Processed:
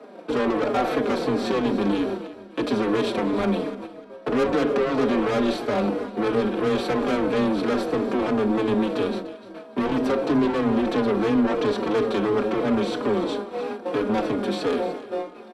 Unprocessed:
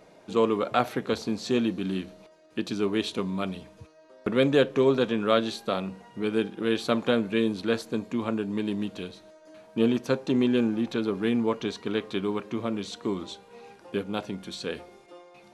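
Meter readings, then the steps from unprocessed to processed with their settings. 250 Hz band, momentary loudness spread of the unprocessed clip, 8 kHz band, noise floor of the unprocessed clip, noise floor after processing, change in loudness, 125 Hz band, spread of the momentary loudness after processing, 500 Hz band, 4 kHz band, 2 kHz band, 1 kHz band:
+4.0 dB, 12 LU, n/a, -55 dBFS, -43 dBFS, +4.0 dB, +2.0 dB, 8 LU, +4.5 dB, 0.0 dB, +4.0 dB, +6.5 dB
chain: per-bin compression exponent 0.6; gate -35 dBFS, range -14 dB; steep high-pass 170 Hz 36 dB/oct; high shelf 2000 Hz -11 dB; in parallel at +3 dB: limiter -16 dBFS, peak gain reduction 7 dB; on the sum: notch 6600 Hz, Q 6.9; soft clip -19.5 dBFS, distortion -8 dB; frequency shift +15 Hz; on a send: echo with dull and thin repeats by turns 0.148 s, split 920 Hz, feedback 53%, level -9.5 dB; on the sum: endless flanger 4.3 ms -3 Hz; gain +3.5 dB

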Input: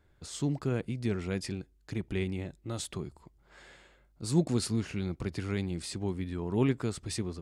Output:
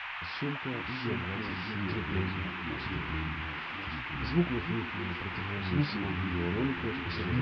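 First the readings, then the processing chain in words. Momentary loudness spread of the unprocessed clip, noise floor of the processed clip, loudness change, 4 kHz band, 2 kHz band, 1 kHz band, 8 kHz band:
10 LU, -39 dBFS, 0.0 dB, +3.5 dB, +11.5 dB, +9.0 dB, under -25 dB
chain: CVSD 64 kbps; treble ducked by the level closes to 1400 Hz, closed at -26 dBFS; in parallel at +2.5 dB: compressor, threshold -44 dBFS, peak gain reduction 22 dB; on the sum: resonator 87 Hz, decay 0.16 s, harmonics all, mix 90%; random-step tremolo, depth 55%; echoes that change speed 0.577 s, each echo -3 st, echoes 2; on a send: delay with a stepping band-pass 0.309 s, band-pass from 230 Hz, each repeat 0.7 oct, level -9 dB; on the sum: downsampling 11025 Hz; band noise 810–2800 Hz -42 dBFS; gain +2.5 dB

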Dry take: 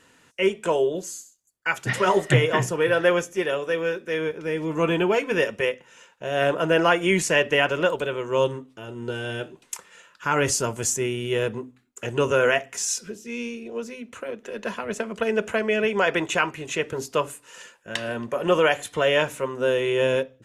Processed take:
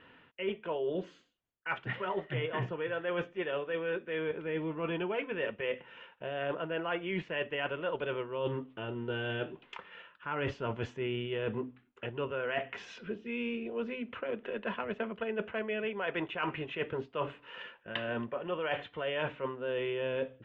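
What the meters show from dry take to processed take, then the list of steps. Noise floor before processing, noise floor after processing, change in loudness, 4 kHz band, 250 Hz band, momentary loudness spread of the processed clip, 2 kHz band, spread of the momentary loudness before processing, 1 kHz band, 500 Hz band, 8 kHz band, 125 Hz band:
-59 dBFS, -64 dBFS, -12.5 dB, -12.5 dB, -10.0 dB, 7 LU, -12.0 dB, 15 LU, -12.0 dB, -12.0 dB, under -35 dB, -11.5 dB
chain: Chebyshev low-pass 3200 Hz, order 4; reverse; compressor 12:1, threshold -31 dBFS, peak gain reduction 18.5 dB; reverse

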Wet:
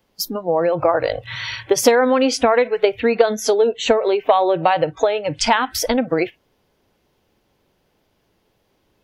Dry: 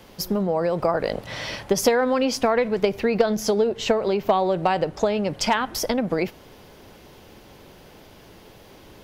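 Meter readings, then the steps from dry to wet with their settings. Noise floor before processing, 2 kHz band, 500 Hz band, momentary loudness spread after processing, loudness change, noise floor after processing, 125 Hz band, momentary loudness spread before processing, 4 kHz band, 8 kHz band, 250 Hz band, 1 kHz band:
-48 dBFS, +5.5 dB, +5.0 dB, 9 LU, +4.5 dB, -66 dBFS, -1.5 dB, 6 LU, +5.0 dB, +5.5 dB, +2.0 dB, +5.5 dB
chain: spectral noise reduction 23 dB; gain +5.5 dB

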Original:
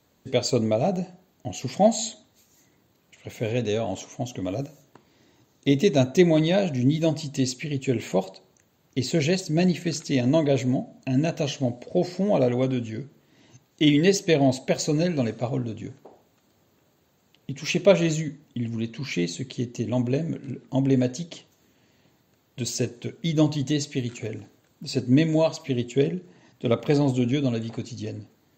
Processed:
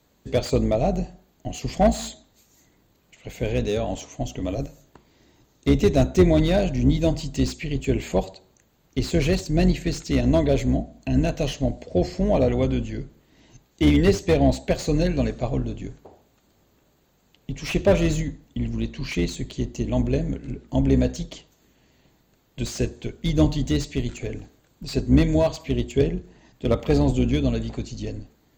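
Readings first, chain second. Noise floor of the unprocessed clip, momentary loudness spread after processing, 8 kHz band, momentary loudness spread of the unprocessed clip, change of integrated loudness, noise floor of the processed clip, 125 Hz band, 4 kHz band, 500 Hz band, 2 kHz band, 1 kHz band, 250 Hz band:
-65 dBFS, 14 LU, -3.0 dB, 14 LU, +1.0 dB, -63 dBFS, +2.5 dB, -2.0 dB, +0.5 dB, -0.5 dB, +1.0 dB, +1.0 dB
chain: octaver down 2 oct, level -3 dB; slew limiter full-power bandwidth 120 Hz; gain +1 dB

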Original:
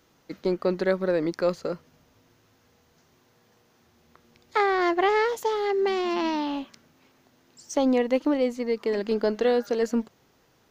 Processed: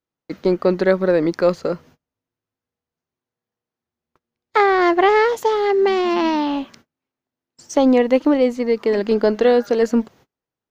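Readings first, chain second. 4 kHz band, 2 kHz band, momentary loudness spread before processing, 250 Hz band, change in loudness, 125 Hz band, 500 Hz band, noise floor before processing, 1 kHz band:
+5.5 dB, +7.0 dB, 9 LU, +8.0 dB, +8.0 dB, n/a, +8.0 dB, -64 dBFS, +7.5 dB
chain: gate -52 dBFS, range -33 dB; high shelf 4100 Hz -5.5 dB; gain +8 dB

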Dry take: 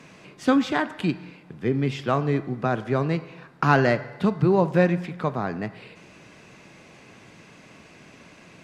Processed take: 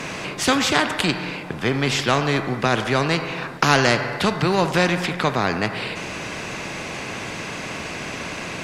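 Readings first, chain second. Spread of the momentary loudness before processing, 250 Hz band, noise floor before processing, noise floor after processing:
10 LU, +0.5 dB, -50 dBFS, -32 dBFS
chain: spectral compressor 2:1; gain +3 dB

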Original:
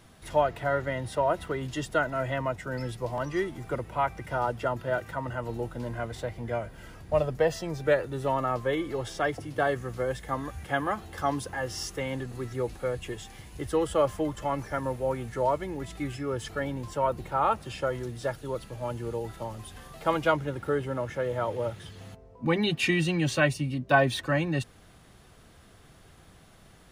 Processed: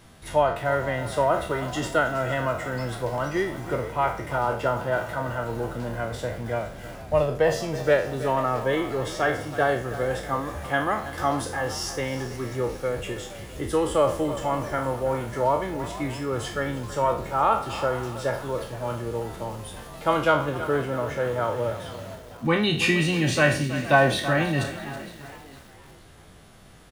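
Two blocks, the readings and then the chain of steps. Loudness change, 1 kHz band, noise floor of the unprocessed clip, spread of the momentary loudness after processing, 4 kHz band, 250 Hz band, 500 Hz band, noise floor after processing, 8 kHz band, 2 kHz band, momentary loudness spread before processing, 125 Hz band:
+4.0 dB, +4.5 dB, -55 dBFS, 10 LU, +5.0 dB, +3.5 dB, +4.0 dB, -48 dBFS, +5.5 dB, +5.0 dB, 10 LU, +3.5 dB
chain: spectral trails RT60 0.44 s; frequency-shifting echo 0.464 s, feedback 42%, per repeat +69 Hz, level -17 dB; lo-fi delay 0.324 s, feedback 55%, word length 7-bit, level -13.5 dB; gain +2.5 dB

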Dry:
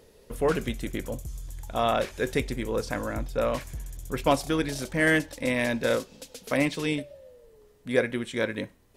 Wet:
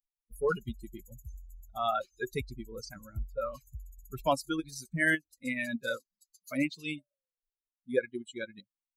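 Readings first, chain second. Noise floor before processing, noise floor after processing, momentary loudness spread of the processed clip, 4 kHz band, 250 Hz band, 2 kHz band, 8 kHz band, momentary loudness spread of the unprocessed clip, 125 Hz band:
-57 dBFS, under -85 dBFS, 18 LU, -8.0 dB, -7.5 dB, -4.5 dB, -8.0 dB, 15 LU, -9.0 dB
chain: per-bin expansion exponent 3; in parallel at -0.5 dB: compressor, threshold -41 dBFS, peak gain reduction 19 dB; on the sum: dynamic EQ 1400 Hz, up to +7 dB, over -52 dBFS, Q 5.1; ending taper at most 580 dB/s; gain -2 dB

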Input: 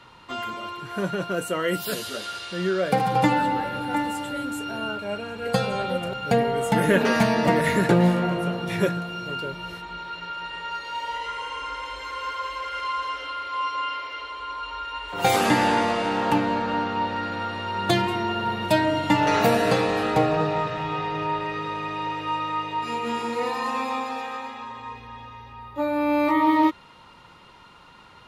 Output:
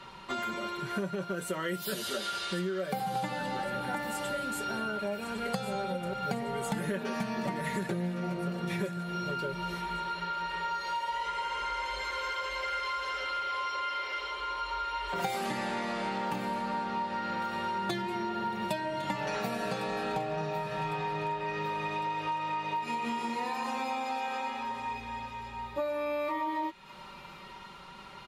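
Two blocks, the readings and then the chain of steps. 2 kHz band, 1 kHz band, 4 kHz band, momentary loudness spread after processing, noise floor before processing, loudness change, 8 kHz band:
-7.5 dB, -7.5 dB, -7.0 dB, 3 LU, -49 dBFS, -9.0 dB, -7.0 dB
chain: comb 5.2 ms, depth 68%; compressor 12:1, threshold -30 dBFS, peak gain reduction 19 dB; on a send: thin delay 1.105 s, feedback 56%, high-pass 2100 Hz, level -11.5 dB

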